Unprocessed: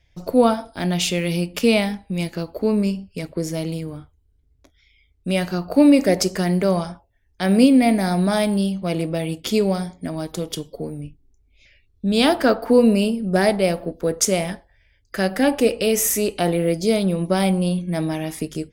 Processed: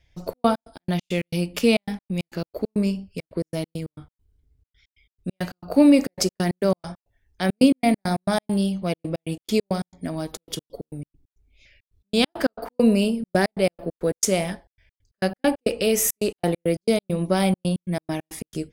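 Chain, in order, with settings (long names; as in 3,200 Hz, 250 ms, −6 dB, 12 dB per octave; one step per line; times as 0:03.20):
gate pattern "xxx.x.x.x.x.x" 136 BPM −60 dB
level −1.5 dB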